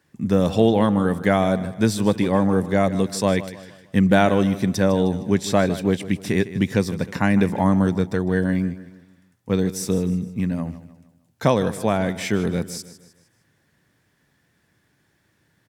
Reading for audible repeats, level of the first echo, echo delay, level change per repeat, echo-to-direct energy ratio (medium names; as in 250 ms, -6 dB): 3, -15.0 dB, 154 ms, -7.5 dB, -14.0 dB